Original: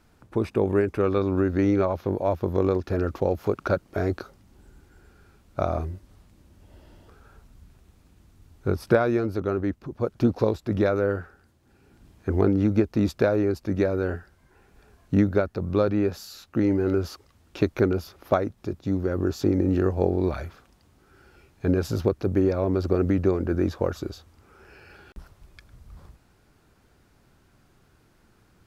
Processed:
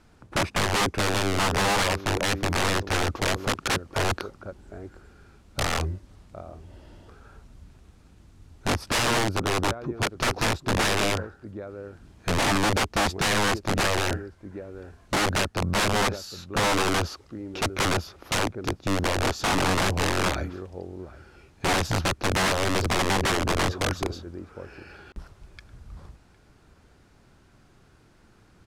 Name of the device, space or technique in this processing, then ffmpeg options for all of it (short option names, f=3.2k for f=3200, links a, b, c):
overflowing digital effects unit: -filter_complex "[0:a]asplit=2[a][b];[b]adelay=758,volume=-18dB,highshelf=f=4k:g=-17.1[c];[a][c]amix=inputs=2:normalize=0,aeval=exprs='(mod(11.2*val(0)+1,2)-1)/11.2':c=same,lowpass=9.6k,volume=3dB"